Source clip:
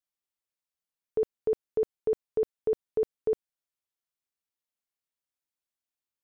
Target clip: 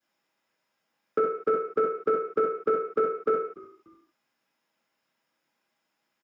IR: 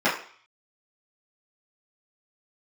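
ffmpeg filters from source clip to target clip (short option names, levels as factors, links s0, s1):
-filter_complex "[0:a]aeval=exprs='0.0944*sin(PI/2*1.58*val(0)/0.0944)':c=same[s0];[1:a]atrim=start_sample=2205,afade=t=out:st=0.25:d=0.01,atrim=end_sample=11466[s1];[s0][s1]afir=irnorm=-1:irlink=0,acrossover=split=130|410|1100[s2][s3][s4][s5];[s2]acompressor=threshold=0.002:ratio=4[s6];[s3]acompressor=threshold=0.0316:ratio=4[s7];[s4]acompressor=threshold=0.0708:ratio=4[s8];[s5]acompressor=threshold=0.0282:ratio=4[s9];[s6][s7][s8][s9]amix=inputs=4:normalize=0,asplit=3[s10][s11][s12];[s11]adelay=292,afreqshift=-57,volume=0.0794[s13];[s12]adelay=584,afreqshift=-114,volume=0.0254[s14];[s10][s13][s14]amix=inputs=3:normalize=0,volume=0.596"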